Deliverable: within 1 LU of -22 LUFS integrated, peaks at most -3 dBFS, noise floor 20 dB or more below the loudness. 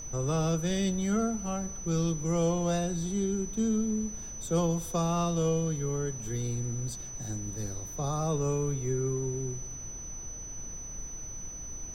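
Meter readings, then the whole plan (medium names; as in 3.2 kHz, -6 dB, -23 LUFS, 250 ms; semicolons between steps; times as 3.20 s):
steady tone 6 kHz; tone level -40 dBFS; noise floor -41 dBFS; noise floor target -52 dBFS; loudness -31.5 LUFS; peak level -16.5 dBFS; loudness target -22.0 LUFS
-> band-stop 6 kHz, Q 30; noise print and reduce 11 dB; trim +9.5 dB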